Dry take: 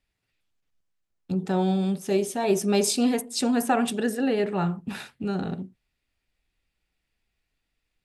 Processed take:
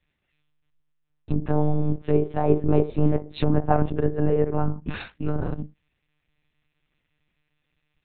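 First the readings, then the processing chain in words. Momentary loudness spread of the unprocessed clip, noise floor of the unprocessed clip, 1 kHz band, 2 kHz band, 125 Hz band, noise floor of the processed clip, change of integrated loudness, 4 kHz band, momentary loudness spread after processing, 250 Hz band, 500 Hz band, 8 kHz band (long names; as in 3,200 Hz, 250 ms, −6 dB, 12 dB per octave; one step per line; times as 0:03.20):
11 LU, −81 dBFS, +0.5 dB, −5.0 dB, +8.0 dB, −77 dBFS, +1.0 dB, −11.5 dB, 11 LU, −0.5 dB, +1.5 dB, below −40 dB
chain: one-pitch LPC vocoder at 8 kHz 150 Hz
treble cut that deepens with the level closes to 1,000 Hz, closed at −22 dBFS
every ending faded ahead of time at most 430 dB per second
level +4 dB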